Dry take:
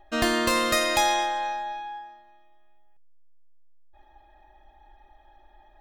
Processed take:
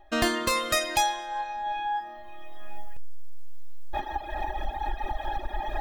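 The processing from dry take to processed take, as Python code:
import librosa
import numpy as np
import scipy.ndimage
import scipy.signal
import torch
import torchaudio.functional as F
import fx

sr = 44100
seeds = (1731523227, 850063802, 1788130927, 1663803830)

y = fx.recorder_agc(x, sr, target_db=-18.0, rise_db_per_s=21.0, max_gain_db=30)
y = fx.dereverb_blind(y, sr, rt60_s=1.4)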